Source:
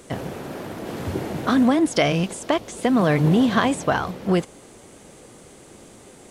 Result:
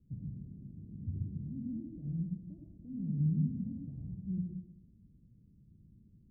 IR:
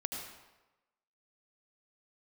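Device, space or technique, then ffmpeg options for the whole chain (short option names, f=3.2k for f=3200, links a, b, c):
club heard from the street: -filter_complex "[0:a]alimiter=limit=-14dB:level=0:latency=1:release=17,lowpass=f=170:w=0.5412,lowpass=f=170:w=1.3066[a];[1:a]atrim=start_sample=2205[b];[a][b]afir=irnorm=-1:irlink=0,volume=-7.5dB"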